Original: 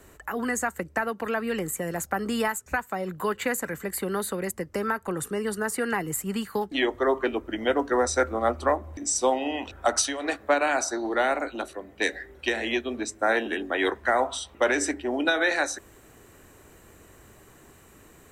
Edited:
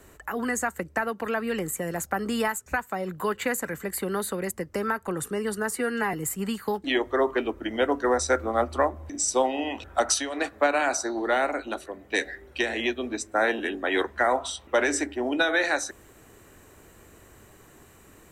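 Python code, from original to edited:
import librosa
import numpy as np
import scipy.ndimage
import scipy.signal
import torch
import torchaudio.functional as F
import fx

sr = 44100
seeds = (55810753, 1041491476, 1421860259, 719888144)

y = fx.edit(x, sr, fx.stretch_span(start_s=5.76, length_s=0.25, factor=1.5), tone=tone)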